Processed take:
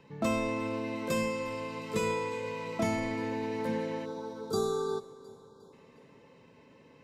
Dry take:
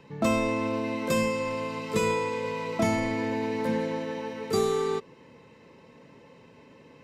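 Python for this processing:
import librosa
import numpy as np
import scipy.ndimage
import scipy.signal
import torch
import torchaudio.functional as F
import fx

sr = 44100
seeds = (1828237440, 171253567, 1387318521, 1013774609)

y = fx.spec_erase(x, sr, start_s=4.06, length_s=1.67, low_hz=1600.0, high_hz=3200.0)
y = fx.echo_feedback(y, sr, ms=357, feedback_pct=49, wet_db=-20)
y = y * 10.0 ** (-5.0 / 20.0)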